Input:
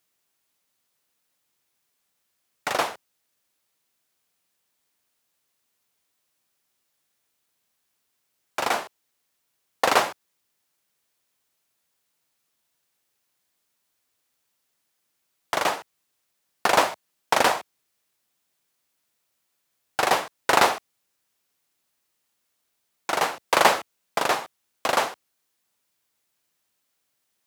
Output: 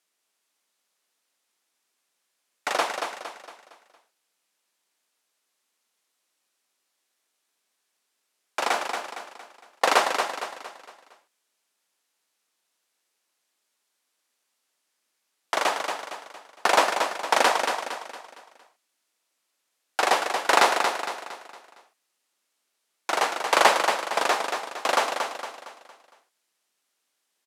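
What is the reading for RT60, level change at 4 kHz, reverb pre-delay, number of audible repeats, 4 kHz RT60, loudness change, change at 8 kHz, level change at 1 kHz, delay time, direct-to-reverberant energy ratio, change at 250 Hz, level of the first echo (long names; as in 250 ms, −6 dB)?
no reverb audible, +1.0 dB, no reverb audible, 4, no reverb audible, −0.5 dB, +0.5 dB, +1.0 dB, 230 ms, no reverb audible, −2.0 dB, −6.0 dB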